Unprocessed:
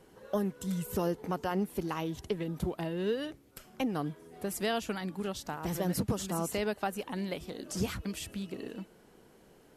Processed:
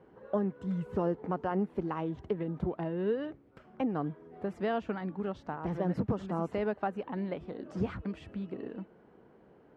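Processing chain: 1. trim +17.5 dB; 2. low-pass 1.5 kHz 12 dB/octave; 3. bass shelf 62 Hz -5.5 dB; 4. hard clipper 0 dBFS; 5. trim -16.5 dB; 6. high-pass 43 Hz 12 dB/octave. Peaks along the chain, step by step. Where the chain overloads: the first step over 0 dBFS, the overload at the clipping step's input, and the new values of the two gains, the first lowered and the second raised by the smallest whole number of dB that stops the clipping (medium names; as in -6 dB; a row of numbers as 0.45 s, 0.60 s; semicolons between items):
-3.5 dBFS, -4.0 dBFS, -3.5 dBFS, -3.5 dBFS, -20.0 dBFS, -19.5 dBFS; nothing clips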